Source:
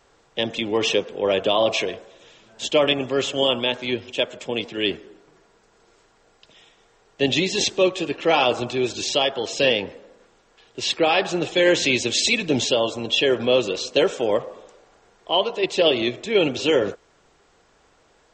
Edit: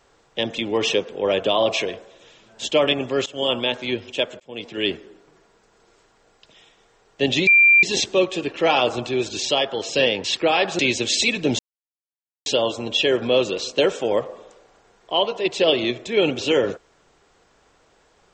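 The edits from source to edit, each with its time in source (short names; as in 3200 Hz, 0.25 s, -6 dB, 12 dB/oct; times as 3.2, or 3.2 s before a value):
3.26–3.53 fade in, from -18 dB
4.4–4.79 fade in
7.47 add tone 2370 Hz -9.5 dBFS 0.36 s
9.88–10.81 cut
11.36–11.84 cut
12.64 insert silence 0.87 s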